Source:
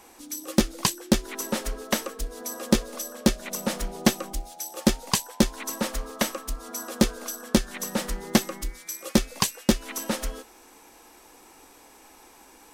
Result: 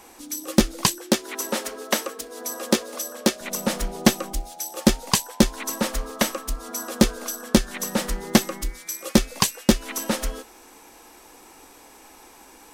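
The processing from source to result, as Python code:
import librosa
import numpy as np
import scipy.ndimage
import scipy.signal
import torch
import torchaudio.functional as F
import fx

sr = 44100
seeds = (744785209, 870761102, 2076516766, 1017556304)

y = fx.highpass(x, sr, hz=270.0, slope=12, at=(0.98, 3.41))
y = y * librosa.db_to_amplitude(3.5)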